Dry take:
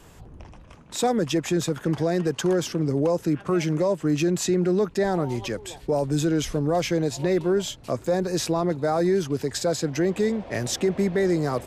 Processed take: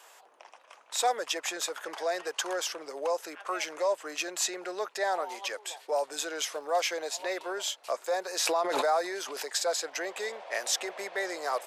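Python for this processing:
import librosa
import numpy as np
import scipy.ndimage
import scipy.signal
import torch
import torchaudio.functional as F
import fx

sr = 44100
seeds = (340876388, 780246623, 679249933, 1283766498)

y = scipy.signal.sosfilt(scipy.signal.butter(4, 610.0, 'highpass', fs=sr, output='sos'), x)
y = fx.dmg_crackle(y, sr, seeds[0], per_s=fx.line((6.55, 100.0), (7.23, 27.0)), level_db=-47.0, at=(6.55, 7.23), fade=0.02)
y = fx.pre_swell(y, sr, db_per_s=24.0, at=(8.4, 9.49))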